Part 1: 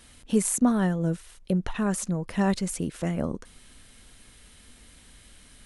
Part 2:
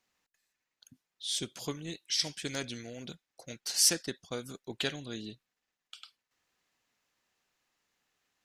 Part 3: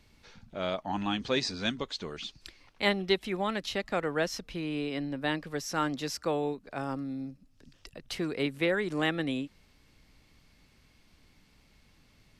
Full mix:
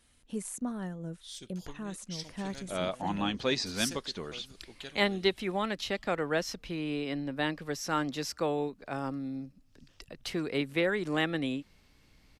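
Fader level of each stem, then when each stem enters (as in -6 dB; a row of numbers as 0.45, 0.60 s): -13.5, -11.5, -0.5 dB; 0.00, 0.00, 2.15 s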